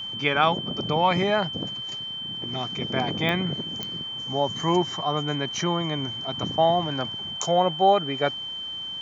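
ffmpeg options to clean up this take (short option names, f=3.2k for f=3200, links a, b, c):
-af "adeclick=t=4,bandreject=f=3.1k:w=30"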